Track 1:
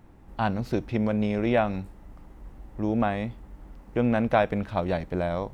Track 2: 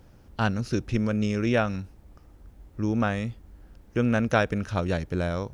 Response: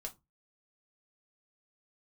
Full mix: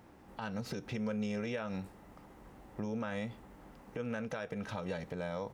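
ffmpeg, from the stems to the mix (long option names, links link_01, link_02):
-filter_complex "[0:a]acompressor=threshold=-26dB:ratio=6,volume=0.5dB[link_01];[1:a]volume=-1,adelay=3,volume=-12.5dB,asplit=3[link_02][link_03][link_04];[link_03]volume=-3dB[link_05];[link_04]apad=whole_len=244311[link_06];[link_01][link_06]sidechaincompress=threshold=-42dB:ratio=8:attack=7.6:release=108[link_07];[2:a]atrim=start_sample=2205[link_08];[link_05][link_08]afir=irnorm=-1:irlink=0[link_09];[link_07][link_02][link_09]amix=inputs=3:normalize=0,highpass=frequency=270:poles=1,alimiter=level_in=3.5dB:limit=-24dB:level=0:latency=1:release=101,volume=-3.5dB"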